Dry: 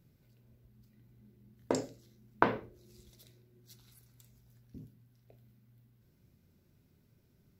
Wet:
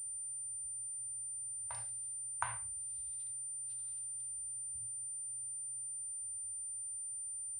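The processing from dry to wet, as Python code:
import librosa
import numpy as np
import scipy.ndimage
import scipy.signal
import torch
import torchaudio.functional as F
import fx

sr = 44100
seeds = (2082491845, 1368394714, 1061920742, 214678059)

y = fx.hpss(x, sr, part='percussive', gain_db=-10)
y = scipy.signal.sosfilt(scipy.signal.ellip(3, 1.0, 50, [100.0, 840.0], 'bandstop', fs=sr, output='sos'), y)
y = fx.pwm(y, sr, carrier_hz=9100.0)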